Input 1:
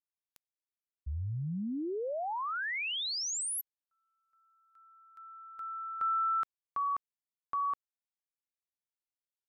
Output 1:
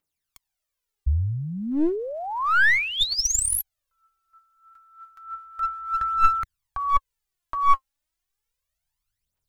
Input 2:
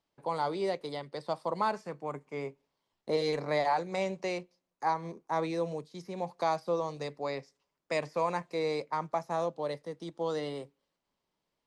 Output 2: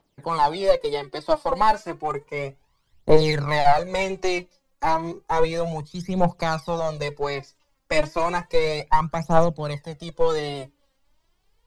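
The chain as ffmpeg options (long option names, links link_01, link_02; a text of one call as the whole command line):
ffmpeg -i in.wav -filter_complex "[0:a]aphaser=in_gain=1:out_gain=1:delay=3.8:decay=0.7:speed=0.32:type=triangular,asplit=2[link_01][link_02];[link_02]aeval=exprs='clip(val(0),-1,0.0316)':channel_layout=same,volume=-4dB[link_03];[link_01][link_03]amix=inputs=2:normalize=0,asubboost=boost=7.5:cutoff=100,volume=4.5dB" out.wav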